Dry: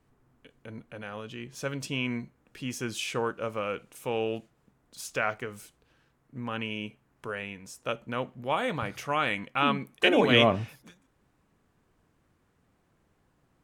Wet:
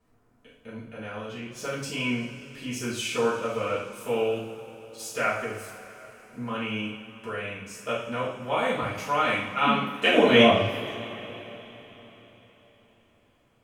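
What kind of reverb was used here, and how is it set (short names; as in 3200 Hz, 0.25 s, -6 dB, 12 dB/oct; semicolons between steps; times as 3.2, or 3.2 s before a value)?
two-slope reverb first 0.57 s, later 4.3 s, from -18 dB, DRR -8.5 dB; gain -6 dB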